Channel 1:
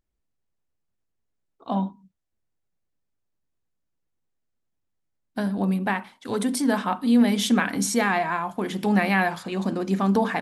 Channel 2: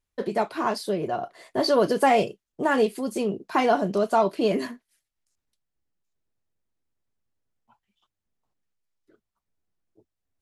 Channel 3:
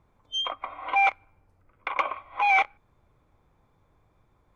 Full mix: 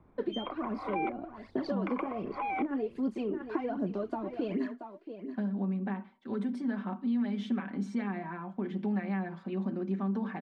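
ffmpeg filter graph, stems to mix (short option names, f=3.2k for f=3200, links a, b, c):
-filter_complex "[0:a]aecho=1:1:5.2:0.67,volume=-14dB[a];[1:a]highpass=190,acompressor=threshold=-23dB:ratio=6,aphaser=in_gain=1:out_gain=1:delay=4:decay=0.6:speed=1.3:type=triangular,volume=-6.5dB,asplit=2[b][c];[c]volume=-14.5dB[d];[2:a]volume=1dB[e];[d]aecho=0:1:679:1[f];[a][b][e][f]amix=inputs=4:normalize=0,lowpass=2.2k,equalizer=f=260:t=o:w=1.2:g=10,acrossover=split=400|900[g][h][i];[g]acompressor=threshold=-31dB:ratio=4[j];[h]acompressor=threshold=-44dB:ratio=4[k];[i]acompressor=threshold=-43dB:ratio=4[l];[j][k][l]amix=inputs=3:normalize=0"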